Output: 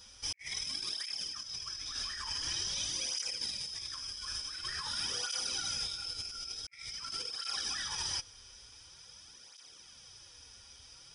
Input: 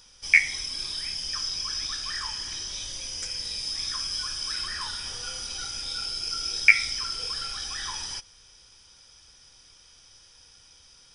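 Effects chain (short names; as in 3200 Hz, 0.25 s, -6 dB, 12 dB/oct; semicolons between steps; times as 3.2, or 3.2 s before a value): negative-ratio compressor -35 dBFS, ratio -0.5; tape flanging out of phase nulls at 0.47 Hz, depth 6.9 ms; gain -1.5 dB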